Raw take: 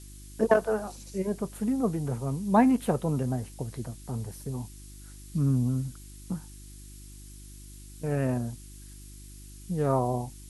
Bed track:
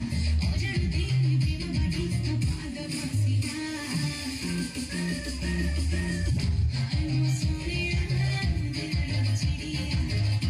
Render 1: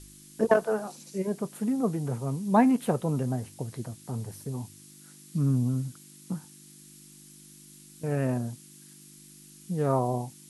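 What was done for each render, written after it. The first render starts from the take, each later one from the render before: de-hum 50 Hz, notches 2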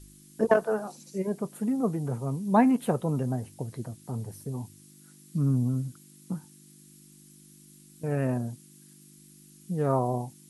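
denoiser 6 dB, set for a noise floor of -52 dBFS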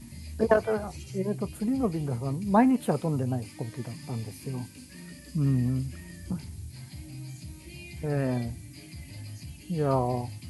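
add bed track -15.5 dB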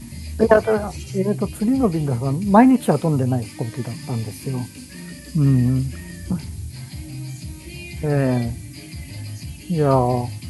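gain +9 dB; limiter -1 dBFS, peak gain reduction 1 dB

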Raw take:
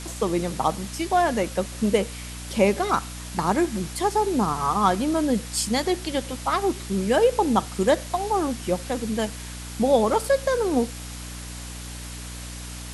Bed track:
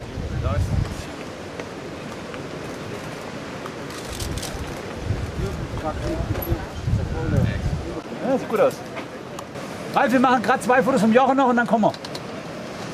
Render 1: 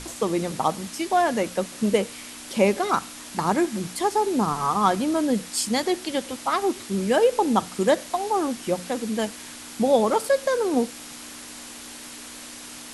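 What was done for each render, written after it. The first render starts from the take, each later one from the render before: notches 60/120/180 Hz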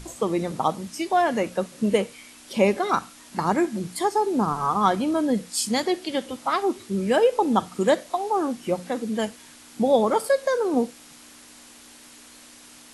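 noise print and reduce 8 dB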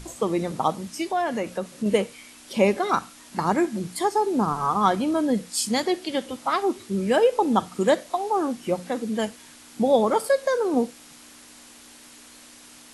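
1.11–1.86 compressor 1.5:1, threshold -28 dBFS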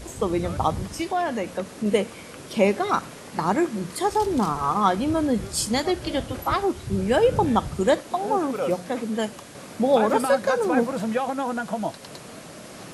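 add bed track -9.5 dB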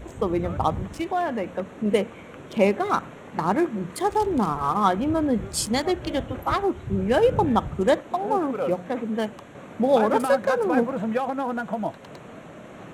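Wiener smoothing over 9 samples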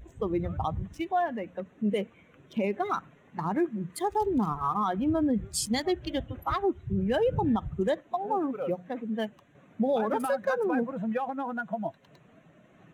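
per-bin expansion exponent 1.5; limiter -19 dBFS, peak gain reduction 11.5 dB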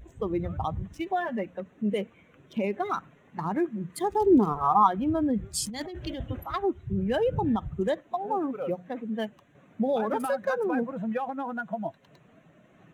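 1.06–1.46 comb 5.1 ms, depth 89%; 3.96–4.86 bell 160 Hz -> 950 Hz +14.5 dB; 5.66–6.54 negative-ratio compressor -34 dBFS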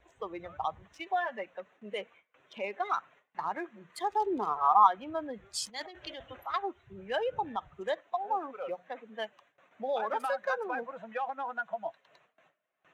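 gate with hold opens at -46 dBFS; three-band isolator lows -23 dB, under 540 Hz, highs -13 dB, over 6400 Hz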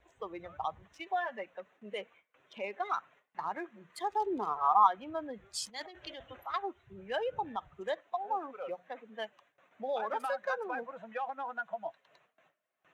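gain -2.5 dB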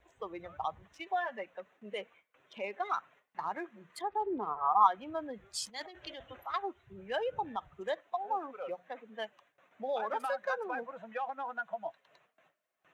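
4.01–4.81 air absorption 440 m

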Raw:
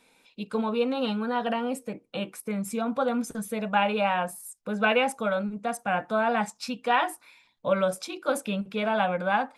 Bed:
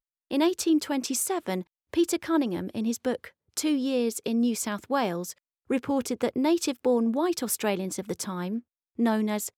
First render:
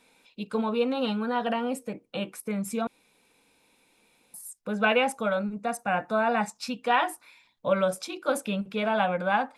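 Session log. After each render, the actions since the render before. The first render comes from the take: 2.87–4.34 room tone; 5.37–6.55 Butterworth band-stop 3200 Hz, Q 7.2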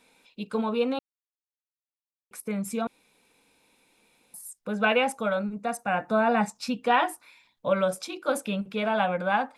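0.99–2.31 mute; 6.06–7.06 low shelf 470 Hz +5.5 dB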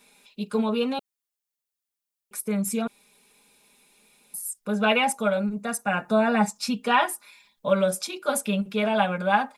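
high shelf 5300 Hz +9 dB; comb 4.9 ms, depth 68%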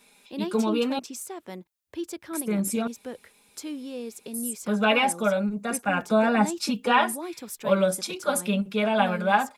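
add bed -9.5 dB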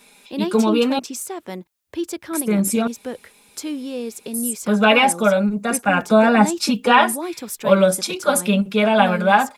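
gain +7.5 dB; limiter -1 dBFS, peak gain reduction 1.5 dB

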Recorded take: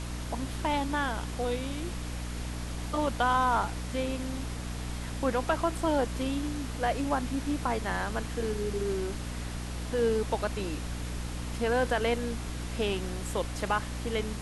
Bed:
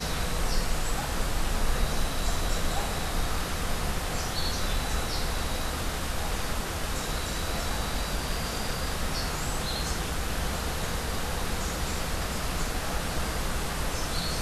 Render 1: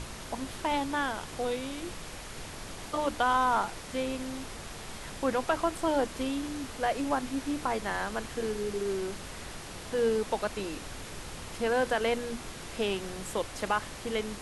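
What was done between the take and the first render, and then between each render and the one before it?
notches 60/120/180/240/300 Hz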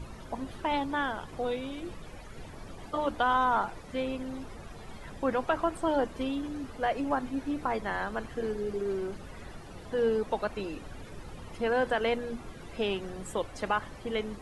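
denoiser 14 dB, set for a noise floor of -43 dBFS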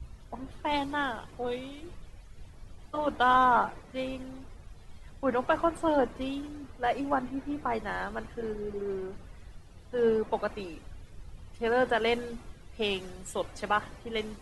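three-band expander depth 70%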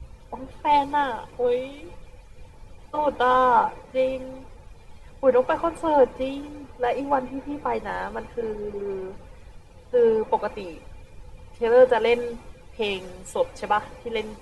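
in parallel at -11 dB: soft clip -28.5 dBFS, distortion -6 dB; on the sum: small resonant body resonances 510/870/2400 Hz, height 13 dB, ringing for 55 ms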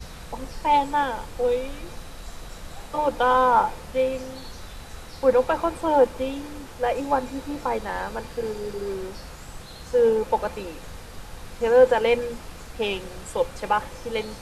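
add bed -11.5 dB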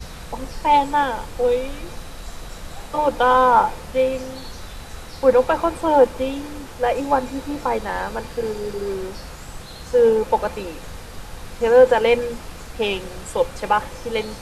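gain +4 dB; limiter -3 dBFS, peak gain reduction 1 dB

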